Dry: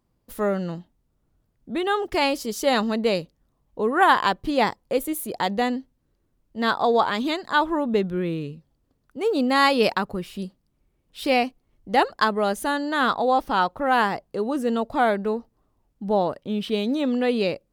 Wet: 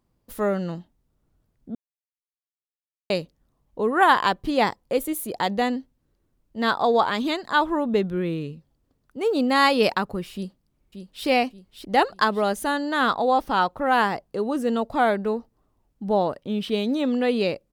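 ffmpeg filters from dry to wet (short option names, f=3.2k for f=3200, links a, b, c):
-filter_complex "[0:a]asplit=2[a][b];[b]afade=t=in:st=10.34:d=0.01,afade=t=out:st=11.26:d=0.01,aecho=0:1:580|1160|1740|2320|2900:0.398107|0.159243|0.0636971|0.0254789|0.0101915[c];[a][c]amix=inputs=2:normalize=0,asplit=3[d][e][f];[d]atrim=end=1.75,asetpts=PTS-STARTPTS,afade=t=out:st=1.746:d=0.004:c=hsin[g];[e]atrim=start=1.75:end=3.1,asetpts=PTS-STARTPTS,volume=0[h];[f]atrim=start=3.1,asetpts=PTS-STARTPTS,afade=t=in:d=0.004:c=hsin[i];[g][h][i]concat=n=3:v=0:a=1"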